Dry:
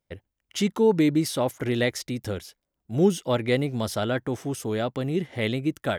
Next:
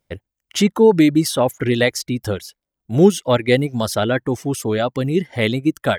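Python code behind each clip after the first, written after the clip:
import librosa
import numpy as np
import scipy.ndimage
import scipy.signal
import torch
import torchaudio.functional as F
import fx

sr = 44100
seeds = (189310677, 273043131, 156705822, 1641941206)

y = fx.dereverb_blind(x, sr, rt60_s=0.87)
y = F.gain(torch.from_numpy(y), 8.5).numpy()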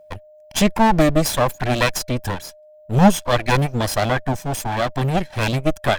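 y = fx.lower_of_two(x, sr, delay_ms=1.2)
y = y + 10.0 ** (-47.0 / 20.0) * np.sin(2.0 * np.pi * 610.0 * np.arange(len(y)) / sr)
y = F.gain(torch.from_numpy(y), 2.5).numpy()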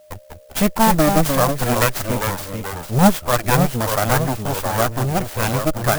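y = fx.dynamic_eq(x, sr, hz=1300.0, q=2.5, threshold_db=-36.0, ratio=4.0, max_db=6)
y = fx.echo_pitch(y, sr, ms=181, semitones=-2, count=2, db_per_echo=-6.0)
y = fx.clock_jitter(y, sr, seeds[0], jitter_ms=0.063)
y = F.gain(torch.from_numpy(y), -1.0).numpy()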